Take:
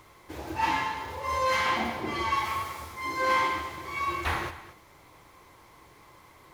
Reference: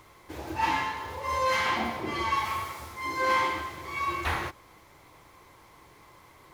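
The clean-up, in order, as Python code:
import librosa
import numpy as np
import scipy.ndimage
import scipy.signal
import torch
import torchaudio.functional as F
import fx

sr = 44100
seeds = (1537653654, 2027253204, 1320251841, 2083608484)

y = fx.fix_echo_inverse(x, sr, delay_ms=230, level_db=-15.5)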